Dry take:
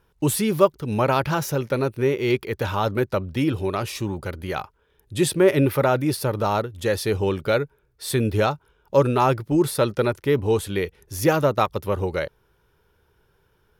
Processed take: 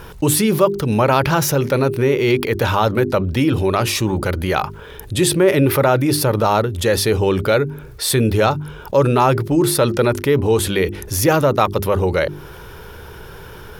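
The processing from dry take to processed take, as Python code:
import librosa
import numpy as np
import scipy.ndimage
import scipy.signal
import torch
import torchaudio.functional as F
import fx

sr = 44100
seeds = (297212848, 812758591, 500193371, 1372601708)

y = fx.hum_notches(x, sr, base_hz=50, count=8)
y = fx.env_flatten(y, sr, amount_pct=50)
y = y * 10.0 ** (1.5 / 20.0)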